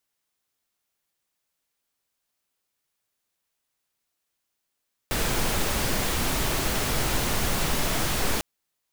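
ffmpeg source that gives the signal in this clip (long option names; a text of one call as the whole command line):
ffmpeg -f lavfi -i "anoisesrc=color=pink:amplitude=0.288:duration=3.3:sample_rate=44100:seed=1" out.wav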